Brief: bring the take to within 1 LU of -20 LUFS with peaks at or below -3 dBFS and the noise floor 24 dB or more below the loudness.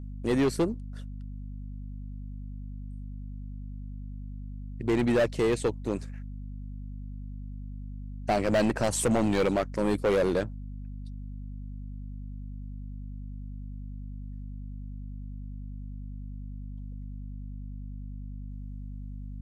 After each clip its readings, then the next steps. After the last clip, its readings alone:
clipped 1.6%; flat tops at -20.0 dBFS; hum 50 Hz; harmonics up to 250 Hz; hum level -36 dBFS; loudness -33.0 LUFS; peak -20.0 dBFS; loudness target -20.0 LUFS
-> clip repair -20 dBFS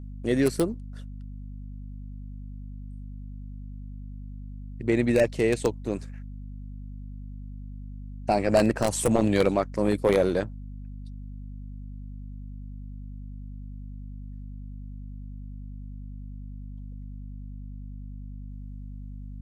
clipped 0.0%; hum 50 Hz; harmonics up to 400 Hz; hum level -36 dBFS
-> notches 50/100/150/200/250/300 Hz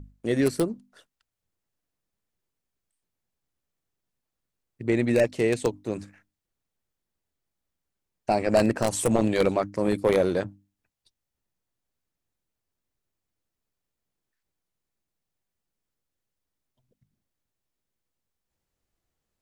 hum none; loudness -25.0 LUFS; peak -10.0 dBFS; loudness target -20.0 LUFS
-> gain +5 dB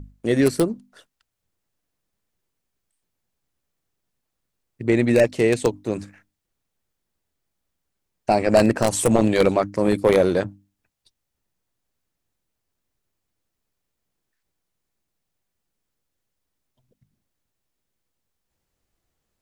loudness -20.0 LUFS; peak -5.0 dBFS; noise floor -80 dBFS

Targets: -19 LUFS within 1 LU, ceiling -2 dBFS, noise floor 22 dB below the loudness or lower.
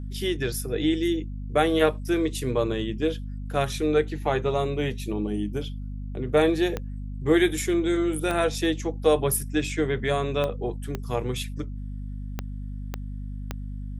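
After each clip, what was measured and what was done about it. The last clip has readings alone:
clicks 7; hum 50 Hz; harmonics up to 250 Hz; hum level -31 dBFS; loudness -26.0 LUFS; peak -6.0 dBFS; loudness target -19.0 LUFS
-> de-click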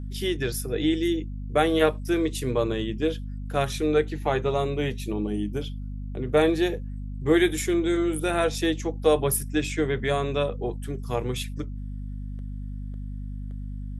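clicks 0; hum 50 Hz; harmonics up to 250 Hz; hum level -31 dBFS
-> de-hum 50 Hz, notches 5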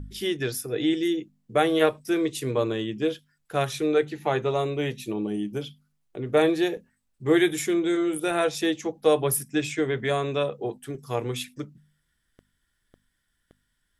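hum none; loudness -26.0 LUFS; peak -6.0 dBFS; loudness target -19.0 LUFS
-> gain +7 dB; limiter -2 dBFS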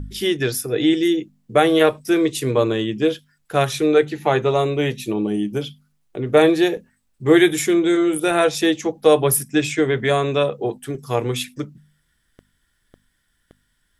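loudness -19.0 LUFS; peak -2.0 dBFS; noise floor -68 dBFS

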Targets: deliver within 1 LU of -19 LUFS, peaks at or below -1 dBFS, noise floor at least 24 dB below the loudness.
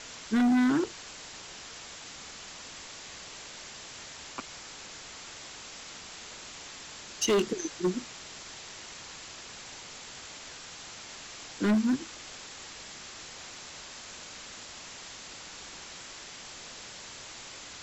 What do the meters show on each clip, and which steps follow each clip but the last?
clipped 1.0%; flat tops at -21.0 dBFS; noise floor -46 dBFS; noise floor target -60 dBFS; loudness -35.5 LUFS; peak -21.0 dBFS; loudness target -19.0 LUFS
-> clip repair -21 dBFS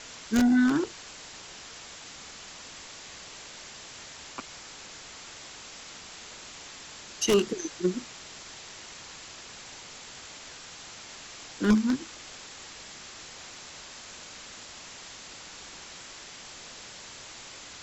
clipped 0.0%; noise floor -46 dBFS; noise floor target -58 dBFS
-> denoiser 12 dB, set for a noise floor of -46 dBFS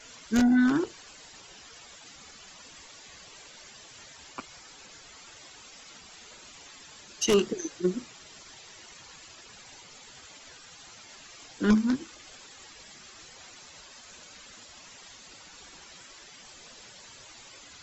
noise floor -51 dBFS; loudness -27.0 LUFS; peak -12.0 dBFS; loudness target -19.0 LUFS
-> gain +8 dB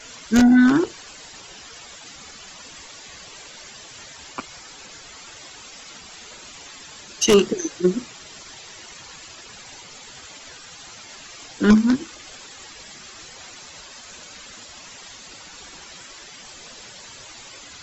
loudness -19.0 LUFS; peak -4.0 dBFS; noise floor -43 dBFS

